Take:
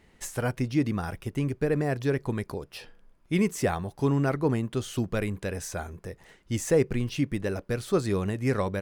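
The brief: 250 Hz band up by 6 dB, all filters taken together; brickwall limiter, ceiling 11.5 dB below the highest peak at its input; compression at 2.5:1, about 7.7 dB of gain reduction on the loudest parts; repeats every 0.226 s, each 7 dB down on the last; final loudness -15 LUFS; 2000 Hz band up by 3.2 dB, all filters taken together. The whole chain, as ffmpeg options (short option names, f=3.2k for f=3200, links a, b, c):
-af "equalizer=f=250:t=o:g=7.5,equalizer=f=2k:t=o:g=4,acompressor=threshold=-26dB:ratio=2.5,alimiter=level_in=2.5dB:limit=-24dB:level=0:latency=1,volume=-2.5dB,aecho=1:1:226|452|678|904|1130:0.447|0.201|0.0905|0.0407|0.0183,volume=20dB"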